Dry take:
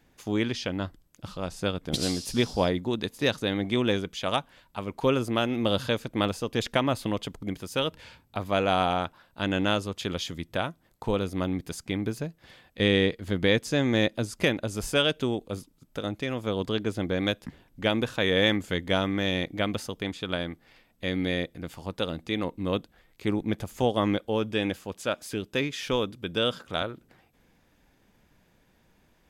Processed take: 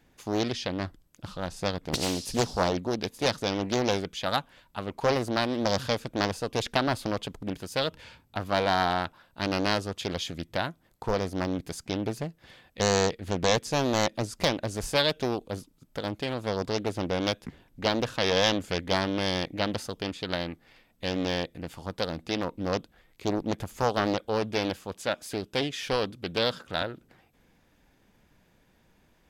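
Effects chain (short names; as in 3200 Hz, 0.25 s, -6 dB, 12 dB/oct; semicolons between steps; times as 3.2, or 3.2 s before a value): Doppler distortion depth 0.98 ms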